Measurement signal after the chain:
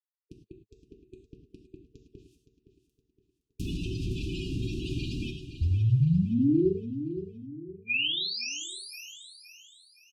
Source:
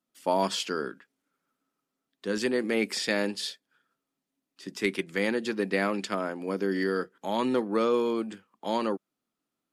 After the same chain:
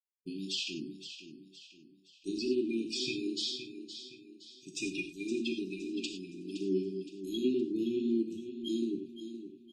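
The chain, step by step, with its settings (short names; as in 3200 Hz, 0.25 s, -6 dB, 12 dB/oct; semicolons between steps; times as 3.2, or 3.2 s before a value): bin magnitudes rounded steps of 30 dB; gate -48 dBFS, range -46 dB; spectral noise reduction 12 dB; dynamic EQ 110 Hz, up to +5 dB, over -54 dBFS, Q 3.1; limiter -23.5 dBFS; reverse; upward compressor, threshold -44 dBFS; reverse; treble ducked by the level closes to 2800 Hz, closed at -28.5 dBFS; brick-wall FIR band-stop 420–2400 Hz; notch comb 210 Hz; on a send: feedback echo 0.517 s, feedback 41%, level -11 dB; on the sum: non-linear reverb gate 0.13 s flat, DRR 4 dB; gain +3 dB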